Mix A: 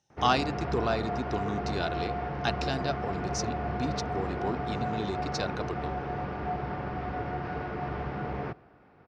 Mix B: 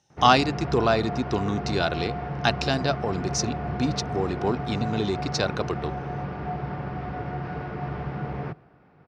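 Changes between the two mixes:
speech +7.5 dB
background: add parametric band 150 Hz +7.5 dB 0.62 octaves

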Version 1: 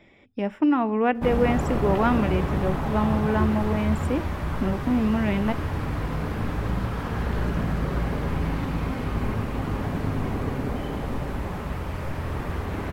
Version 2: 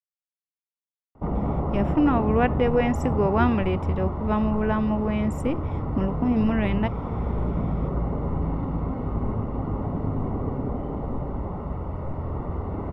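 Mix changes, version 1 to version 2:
speech: entry +1.35 s
background: add Savitzky-Golay smoothing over 65 samples

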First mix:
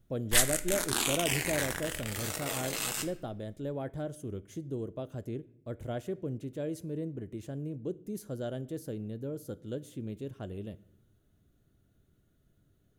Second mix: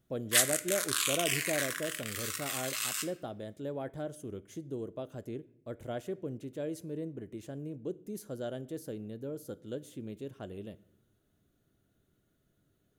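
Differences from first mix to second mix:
background: add linear-phase brick-wall high-pass 1,000 Hz
master: add low-shelf EQ 130 Hz −11 dB

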